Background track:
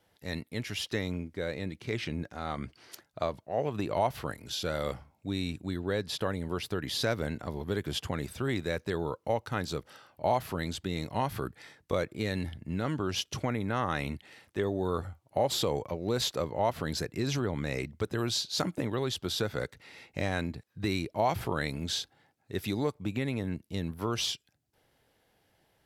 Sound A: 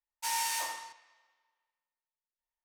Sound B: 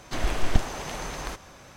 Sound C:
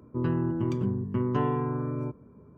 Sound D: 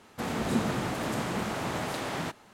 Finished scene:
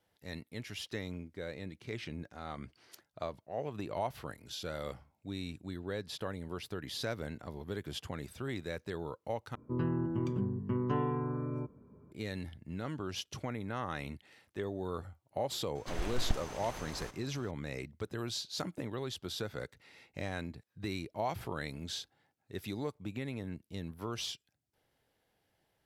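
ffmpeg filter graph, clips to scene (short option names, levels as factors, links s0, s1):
-filter_complex "[0:a]volume=0.422,asplit=2[s0][s1];[s0]atrim=end=9.554[s2];[3:a]atrim=end=2.57,asetpts=PTS-STARTPTS,volume=0.531[s3];[s1]atrim=start=12.116[s4];[2:a]atrim=end=1.76,asetpts=PTS-STARTPTS,volume=0.299,afade=t=in:d=0.004:c=hsin,afade=t=out:st=1.756:d=0.004:c=hsin,adelay=15750[s5];[s2][s3]acrossfade=d=0.004:c1=hsin:c2=hsin[s6];[s6][s4]acrossfade=d=0.004:c1=hsin:c2=hsin[s7];[s7][s5]amix=inputs=2:normalize=0"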